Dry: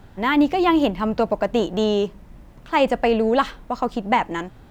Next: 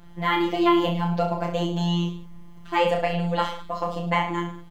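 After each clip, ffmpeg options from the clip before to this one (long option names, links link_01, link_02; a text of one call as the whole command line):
ffmpeg -i in.wav -af "afftfilt=real='hypot(re,im)*cos(PI*b)':imag='0':win_size=1024:overlap=0.75,aecho=1:1:30|64.5|104.2|149.8|202.3:0.631|0.398|0.251|0.158|0.1,volume=-1dB" out.wav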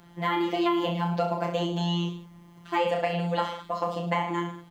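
ffmpeg -i in.wav -filter_complex "[0:a]highpass=frequency=160:poles=1,acrossover=split=880|5700[link_01][link_02][link_03];[link_01]acompressor=threshold=-24dB:ratio=4[link_04];[link_02]acompressor=threshold=-30dB:ratio=4[link_05];[link_03]acompressor=threshold=-55dB:ratio=4[link_06];[link_04][link_05][link_06]amix=inputs=3:normalize=0" out.wav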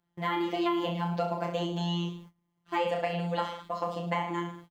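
ffmpeg -i in.wav -af "agate=range=-23dB:threshold=-45dB:ratio=16:detection=peak,volume=-3.5dB" out.wav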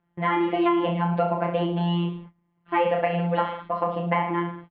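ffmpeg -i in.wav -af "lowpass=frequency=2600:width=0.5412,lowpass=frequency=2600:width=1.3066,volume=7dB" out.wav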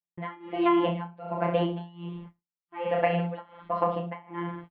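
ffmpeg -i in.wav -af "agate=range=-33dB:threshold=-45dB:ratio=3:detection=peak,tremolo=f=1.3:d=0.96" out.wav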